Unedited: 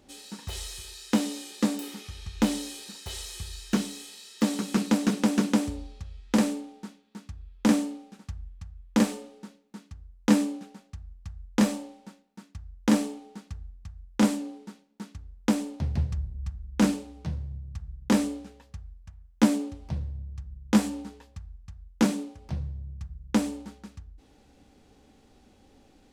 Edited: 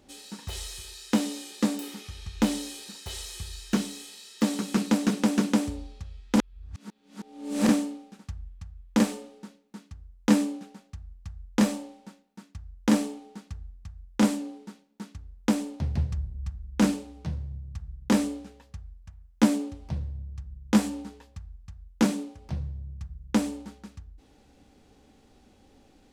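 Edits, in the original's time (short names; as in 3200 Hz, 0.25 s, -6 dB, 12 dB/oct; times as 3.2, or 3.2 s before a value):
6.36–7.69 reverse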